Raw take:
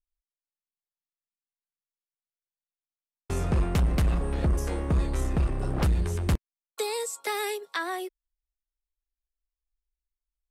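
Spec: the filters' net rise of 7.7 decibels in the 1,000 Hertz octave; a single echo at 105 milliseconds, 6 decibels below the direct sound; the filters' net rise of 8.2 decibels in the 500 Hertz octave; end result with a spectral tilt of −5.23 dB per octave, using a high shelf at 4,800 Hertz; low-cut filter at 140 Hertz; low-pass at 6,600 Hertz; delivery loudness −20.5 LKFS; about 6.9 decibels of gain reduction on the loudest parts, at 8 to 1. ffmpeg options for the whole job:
ffmpeg -i in.wav -af "highpass=140,lowpass=6600,equalizer=frequency=500:width_type=o:gain=9,equalizer=frequency=1000:width_type=o:gain=7,highshelf=frequency=4800:gain=-6,acompressor=threshold=-26dB:ratio=8,aecho=1:1:105:0.501,volume=10.5dB" out.wav

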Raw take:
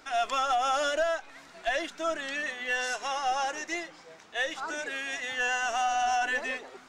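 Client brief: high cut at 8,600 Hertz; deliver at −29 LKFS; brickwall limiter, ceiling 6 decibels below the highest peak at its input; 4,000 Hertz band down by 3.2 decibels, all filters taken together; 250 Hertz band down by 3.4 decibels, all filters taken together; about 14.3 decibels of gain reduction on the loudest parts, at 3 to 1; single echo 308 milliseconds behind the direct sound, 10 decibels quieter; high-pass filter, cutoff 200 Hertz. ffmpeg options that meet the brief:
ffmpeg -i in.wav -af "highpass=200,lowpass=8600,equalizer=frequency=250:width_type=o:gain=-3.5,equalizer=frequency=4000:width_type=o:gain=-4.5,acompressor=threshold=-45dB:ratio=3,alimiter=level_in=13.5dB:limit=-24dB:level=0:latency=1,volume=-13.5dB,aecho=1:1:308:0.316,volume=15.5dB" out.wav

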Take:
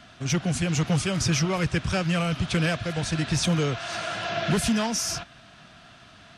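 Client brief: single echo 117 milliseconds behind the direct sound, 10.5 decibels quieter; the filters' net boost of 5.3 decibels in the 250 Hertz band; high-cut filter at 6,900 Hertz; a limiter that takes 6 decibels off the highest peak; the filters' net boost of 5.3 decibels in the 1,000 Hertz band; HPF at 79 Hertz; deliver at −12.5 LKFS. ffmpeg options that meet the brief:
ffmpeg -i in.wav -af "highpass=79,lowpass=6900,equalizer=frequency=250:width_type=o:gain=8.5,equalizer=frequency=1000:width_type=o:gain=7,alimiter=limit=-14dB:level=0:latency=1,aecho=1:1:117:0.299,volume=11dB" out.wav

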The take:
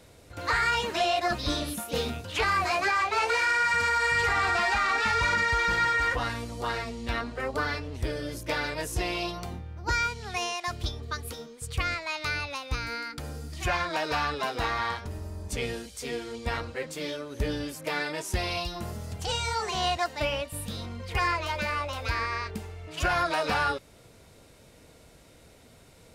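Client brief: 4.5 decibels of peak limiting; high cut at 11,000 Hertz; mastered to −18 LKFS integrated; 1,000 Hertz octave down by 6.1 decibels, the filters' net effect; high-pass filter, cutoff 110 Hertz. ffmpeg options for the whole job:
ffmpeg -i in.wav -af "highpass=110,lowpass=11000,equalizer=frequency=1000:width_type=o:gain=-9,volume=14.5dB,alimiter=limit=-7.5dB:level=0:latency=1" out.wav

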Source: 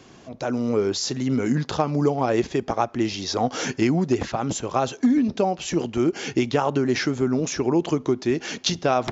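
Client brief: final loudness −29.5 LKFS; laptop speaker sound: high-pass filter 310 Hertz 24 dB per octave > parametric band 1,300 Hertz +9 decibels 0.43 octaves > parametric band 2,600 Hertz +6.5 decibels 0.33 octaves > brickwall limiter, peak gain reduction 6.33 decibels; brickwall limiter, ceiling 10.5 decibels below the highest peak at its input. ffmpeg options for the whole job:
ffmpeg -i in.wav -af "alimiter=limit=-16.5dB:level=0:latency=1,highpass=frequency=310:width=0.5412,highpass=frequency=310:width=1.3066,equalizer=frequency=1300:width_type=o:width=0.43:gain=9,equalizer=frequency=2600:width_type=o:width=0.33:gain=6.5,alimiter=limit=-19.5dB:level=0:latency=1" out.wav

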